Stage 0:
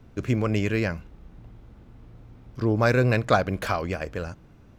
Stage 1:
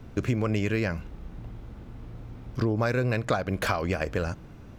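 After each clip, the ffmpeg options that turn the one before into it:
-af "acompressor=threshold=0.0355:ratio=6,volume=2"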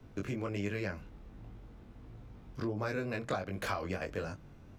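-filter_complex "[0:a]flanger=delay=19.5:depth=2.2:speed=1.4,acrossover=split=130|880|1900[s0][s1][s2][s3];[s0]asoftclip=type=tanh:threshold=0.0112[s4];[s4][s1][s2][s3]amix=inputs=4:normalize=0,volume=0.531"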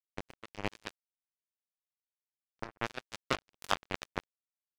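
-af "acrusher=bits=3:mix=0:aa=0.5,volume=2.99"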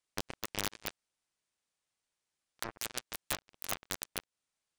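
-af "acompressor=threshold=0.0112:ratio=5,aresample=22050,aresample=44100,aeval=exprs='(mod(28.2*val(0)+1,2)-1)/28.2':c=same,volume=3.55"

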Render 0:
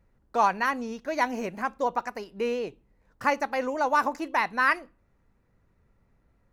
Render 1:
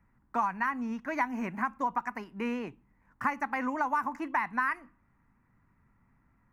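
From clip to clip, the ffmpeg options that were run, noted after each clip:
-filter_complex "[0:a]equalizer=f=125:t=o:w=1:g=5,equalizer=f=250:t=o:w=1:g=9,equalizer=f=500:t=o:w=1:g=-10,equalizer=f=1000:t=o:w=1:g=11,equalizer=f=2000:t=o:w=1:g=9,equalizer=f=4000:t=o:w=1:g=-10,acrossover=split=160|6300[s0][s1][s2];[s1]acompressor=threshold=0.0891:ratio=6[s3];[s2]alimiter=level_in=11.9:limit=0.0631:level=0:latency=1:release=462,volume=0.0841[s4];[s0][s3][s4]amix=inputs=3:normalize=0,volume=0.531"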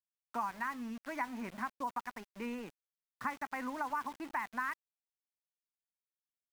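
-af "aeval=exprs='val(0)*gte(abs(val(0)),0.01)':c=same,volume=0.422"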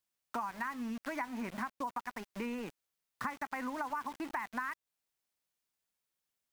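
-af "acompressor=threshold=0.00501:ratio=3,volume=2.66"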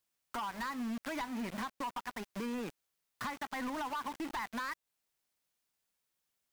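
-af "asoftclip=type=hard:threshold=0.0133,volume=1.41"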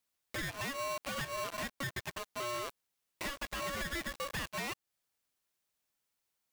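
-af "aeval=exprs='val(0)*sgn(sin(2*PI*840*n/s))':c=same"

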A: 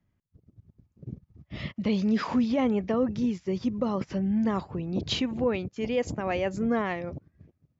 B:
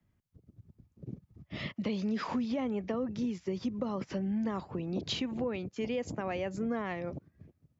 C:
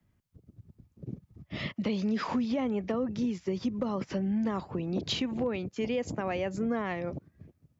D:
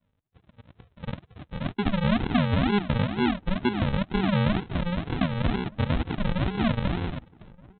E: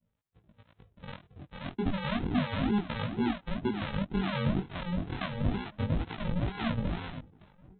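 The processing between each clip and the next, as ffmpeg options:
-filter_complex "[0:a]acrossover=split=95|210[s0][s1][s2];[s0]acompressor=threshold=0.00112:ratio=4[s3];[s1]acompressor=threshold=0.00708:ratio=4[s4];[s2]acompressor=threshold=0.0224:ratio=4[s5];[s3][s4][s5]amix=inputs=3:normalize=0"
-af "asoftclip=type=hard:threshold=0.0631,volume=1.41"
-filter_complex "[0:a]aresample=8000,acrusher=samples=18:mix=1:aa=0.000001:lfo=1:lforange=10.8:lforate=2.1,aresample=44100,dynaudnorm=f=120:g=11:m=2.82,asplit=2[s0][s1];[s1]adelay=1224,volume=0.0631,highshelf=f=4000:g=-27.6[s2];[s0][s2]amix=inputs=2:normalize=0,volume=0.708"
-filter_complex "[0:a]acrossover=split=670[s0][s1];[s0]aeval=exprs='val(0)*(1-0.7/2+0.7/2*cos(2*PI*2.2*n/s))':c=same[s2];[s1]aeval=exprs='val(0)*(1-0.7/2-0.7/2*cos(2*PI*2.2*n/s))':c=same[s3];[s2][s3]amix=inputs=2:normalize=0,flanger=delay=17.5:depth=4.5:speed=0.31"

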